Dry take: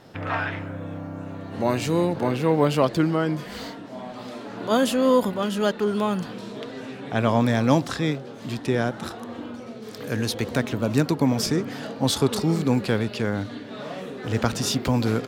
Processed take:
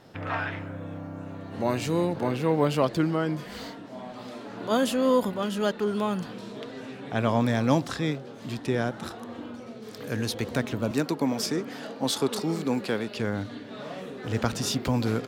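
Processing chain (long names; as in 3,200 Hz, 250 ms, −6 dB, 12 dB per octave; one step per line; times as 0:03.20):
0:10.91–0:13.17: high-pass filter 210 Hz 12 dB per octave
level −3.5 dB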